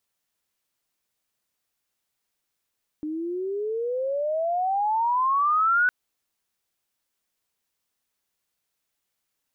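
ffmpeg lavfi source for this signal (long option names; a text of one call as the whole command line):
ffmpeg -f lavfi -i "aevalsrc='pow(10,(-27.5+10.5*t/2.86)/20)*sin(2*PI*300*2.86/log(1500/300)*(exp(log(1500/300)*t/2.86)-1))':duration=2.86:sample_rate=44100" out.wav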